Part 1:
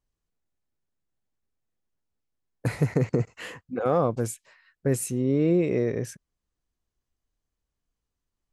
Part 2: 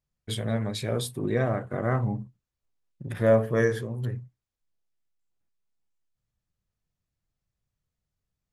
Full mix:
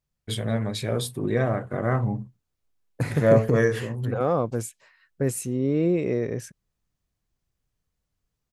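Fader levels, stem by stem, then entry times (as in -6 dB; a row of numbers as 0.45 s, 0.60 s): -0.5 dB, +2.0 dB; 0.35 s, 0.00 s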